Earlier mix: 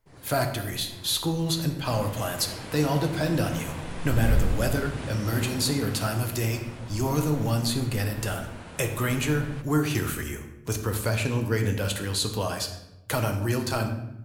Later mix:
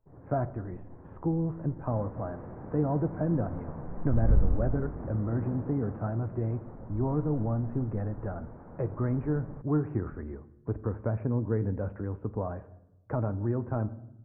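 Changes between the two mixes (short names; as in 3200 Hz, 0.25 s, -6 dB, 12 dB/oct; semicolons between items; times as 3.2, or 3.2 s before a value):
speech: send -11.0 dB; first sound: send off; master: add Gaussian blur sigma 7.9 samples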